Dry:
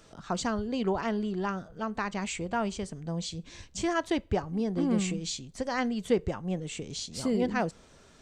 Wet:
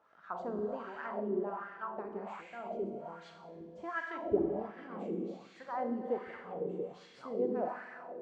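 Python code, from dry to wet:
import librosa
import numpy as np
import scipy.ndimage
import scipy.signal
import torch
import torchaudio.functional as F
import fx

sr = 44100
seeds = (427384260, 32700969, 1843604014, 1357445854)

y = fx.rev_schroeder(x, sr, rt60_s=2.5, comb_ms=30, drr_db=0.5)
y = fx.spec_box(y, sr, start_s=2.41, length_s=0.59, low_hz=870.0, high_hz=2000.0, gain_db=-11)
y = fx.low_shelf(y, sr, hz=200.0, db=9.0, at=(4.22, 4.71))
y = fx.echo_stepped(y, sr, ms=166, hz=160.0, octaves=0.7, feedback_pct=70, wet_db=-12)
y = fx.wah_lfo(y, sr, hz=1.3, low_hz=360.0, high_hz=1800.0, q=3.1)
y = fx.high_shelf(y, sr, hz=3100.0, db=-11.5)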